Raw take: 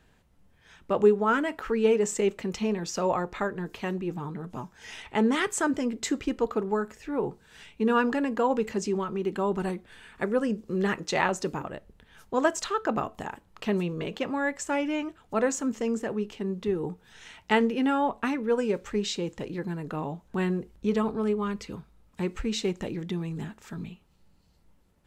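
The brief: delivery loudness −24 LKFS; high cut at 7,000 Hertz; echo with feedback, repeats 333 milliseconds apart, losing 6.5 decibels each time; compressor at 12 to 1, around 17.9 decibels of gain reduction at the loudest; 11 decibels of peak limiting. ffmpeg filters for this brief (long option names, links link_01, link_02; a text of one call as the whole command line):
ffmpeg -i in.wav -af "lowpass=7000,acompressor=threshold=-33dB:ratio=12,alimiter=level_in=6.5dB:limit=-24dB:level=0:latency=1,volume=-6.5dB,aecho=1:1:333|666|999|1332|1665|1998:0.473|0.222|0.105|0.0491|0.0231|0.0109,volume=15dB" out.wav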